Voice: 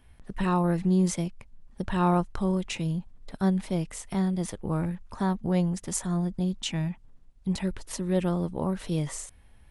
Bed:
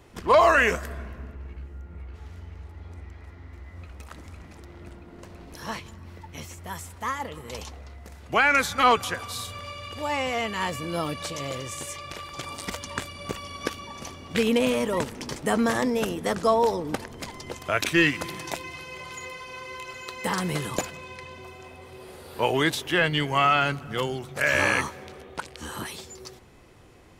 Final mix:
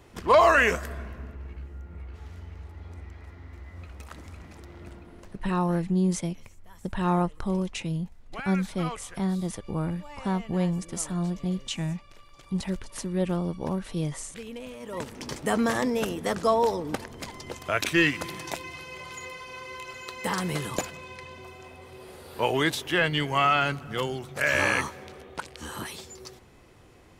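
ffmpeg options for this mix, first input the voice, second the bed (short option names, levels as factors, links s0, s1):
-filter_complex "[0:a]adelay=5050,volume=0.891[s0];[1:a]volume=5.96,afade=t=out:st=4.98:d=0.53:silence=0.141254,afade=t=in:st=14.79:d=0.49:silence=0.158489[s1];[s0][s1]amix=inputs=2:normalize=0"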